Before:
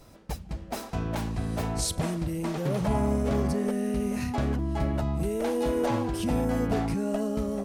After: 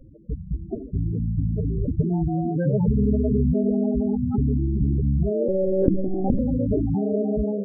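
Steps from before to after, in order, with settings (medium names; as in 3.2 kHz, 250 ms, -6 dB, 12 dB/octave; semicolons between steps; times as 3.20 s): sample-and-hold 42×; on a send at -14 dB: reverberation RT60 1.9 s, pre-delay 7 ms; on the sum: loudest bins only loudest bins 8; 5.48–6.39 s: monotone LPC vocoder at 8 kHz 190 Hz; trim +7.5 dB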